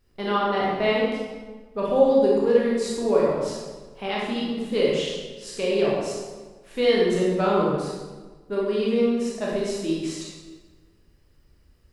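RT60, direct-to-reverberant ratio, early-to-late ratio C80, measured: 1.4 s, -5.0 dB, 1.5 dB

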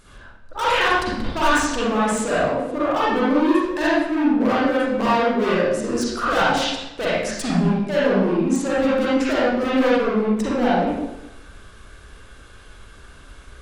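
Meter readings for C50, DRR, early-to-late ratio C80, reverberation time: -4.5 dB, -9.0 dB, 1.0 dB, 0.95 s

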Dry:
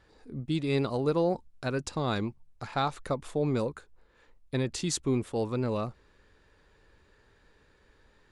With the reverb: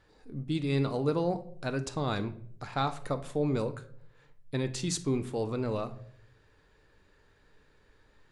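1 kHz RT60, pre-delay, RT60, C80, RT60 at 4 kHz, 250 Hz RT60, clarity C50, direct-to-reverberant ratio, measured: 0.50 s, 7 ms, 0.60 s, 18.5 dB, 0.40 s, 0.95 s, 14.0 dB, 9.0 dB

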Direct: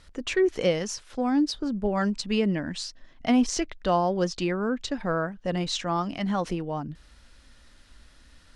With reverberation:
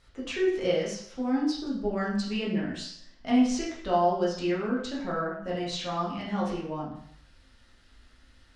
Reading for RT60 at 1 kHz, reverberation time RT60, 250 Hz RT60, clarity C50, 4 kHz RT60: 0.65 s, 0.65 s, 0.55 s, 4.0 dB, 0.60 s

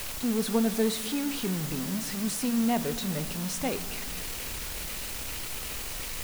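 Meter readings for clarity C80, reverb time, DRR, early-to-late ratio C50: 15.0 dB, 2.0 s, 11.5 dB, 13.5 dB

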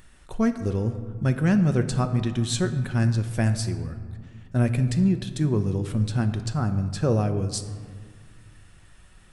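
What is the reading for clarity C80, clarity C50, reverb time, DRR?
12.0 dB, 10.5 dB, 2.0 s, 8.0 dB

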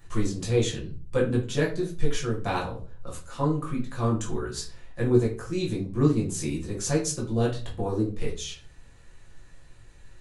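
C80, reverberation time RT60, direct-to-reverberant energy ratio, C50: 14.5 dB, 0.40 s, -4.5 dB, 9.0 dB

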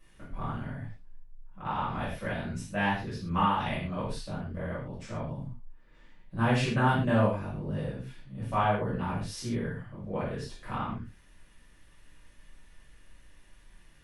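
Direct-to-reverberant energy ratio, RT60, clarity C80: -10.5 dB, not exponential, 7.0 dB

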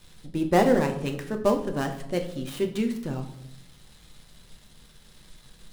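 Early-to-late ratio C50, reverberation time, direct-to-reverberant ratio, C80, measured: 10.5 dB, 0.80 s, 4.0 dB, 13.5 dB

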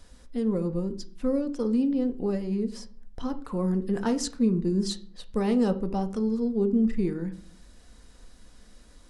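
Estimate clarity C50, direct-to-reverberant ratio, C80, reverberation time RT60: 16.0 dB, 8.0 dB, 20.5 dB, 0.50 s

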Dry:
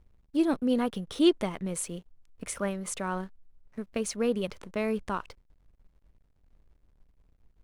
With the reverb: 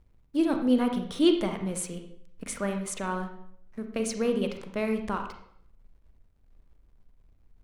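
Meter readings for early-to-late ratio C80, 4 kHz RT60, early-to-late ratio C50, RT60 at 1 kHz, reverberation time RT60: 10.5 dB, 0.55 s, 7.0 dB, 0.65 s, 0.65 s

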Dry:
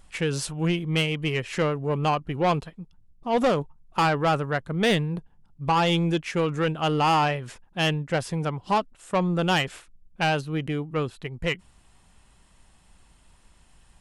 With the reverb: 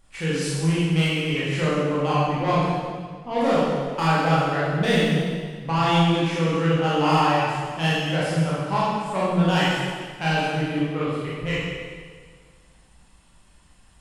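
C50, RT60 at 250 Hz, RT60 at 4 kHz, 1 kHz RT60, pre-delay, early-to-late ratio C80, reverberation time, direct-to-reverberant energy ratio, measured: -3.0 dB, 1.9 s, 1.6 s, 1.7 s, 22 ms, 0.0 dB, 1.7 s, -8.5 dB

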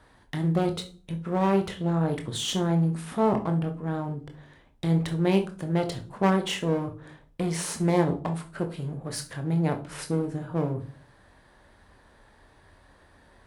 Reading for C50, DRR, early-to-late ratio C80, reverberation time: 12.5 dB, 5.0 dB, 19.0 dB, not exponential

